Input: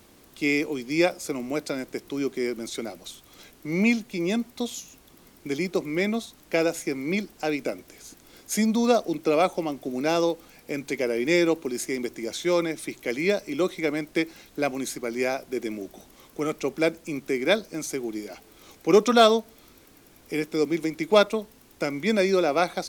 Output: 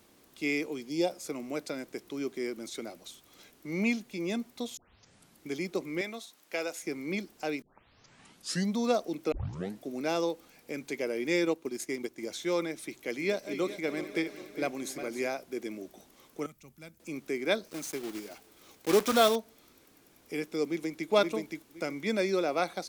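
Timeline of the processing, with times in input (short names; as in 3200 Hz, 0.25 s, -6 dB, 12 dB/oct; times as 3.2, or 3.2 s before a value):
0.89–1.11 spectral gain 1000–2700 Hz -12 dB
4.77 tape start 0.71 s
6.01–6.83 HPF 740 Hz 6 dB/oct
7.62 tape start 1.14 s
9.32 tape start 0.52 s
11.43–12.27 transient shaper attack +3 dB, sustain -7 dB
13.01–15.27 regenerating reverse delay 0.202 s, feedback 68%, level -11 dB
16.46–17 EQ curve 120 Hz 0 dB, 410 Hz -26 dB, 970 Hz -18 dB, 5000 Hz -14 dB, 16000 Hz -3 dB
17.66–19.37 block floating point 3-bit
20.65–21.1 echo throw 0.52 s, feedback 20%, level -3 dB
whole clip: low shelf 72 Hz -10.5 dB; gain -6.5 dB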